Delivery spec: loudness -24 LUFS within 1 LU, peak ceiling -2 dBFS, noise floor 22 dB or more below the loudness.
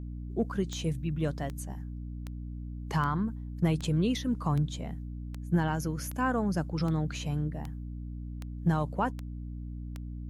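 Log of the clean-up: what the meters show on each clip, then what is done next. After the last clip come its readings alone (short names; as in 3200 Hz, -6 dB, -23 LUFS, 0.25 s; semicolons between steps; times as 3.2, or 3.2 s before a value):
clicks 13; hum 60 Hz; harmonics up to 300 Hz; hum level -36 dBFS; loudness -32.5 LUFS; peak -15.5 dBFS; loudness target -24.0 LUFS
-> de-click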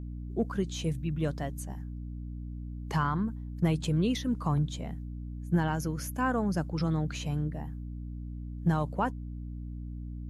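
clicks 0; hum 60 Hz; harmonics up to 300 Hz; hum level -36 dBFS
-> notches 60/120/180/240/300 Hz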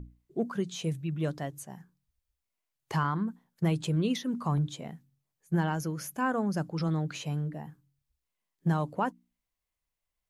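hum none; loudness -32.0 LUFS; peak -16.0 dBFS; loudness target -24.0 LUFS
-> gain +8 dB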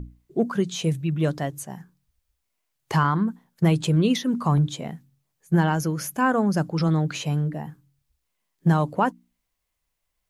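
loudness -24.0 LUFS; peak -8.0 dBFS; noise floor -78 dBFS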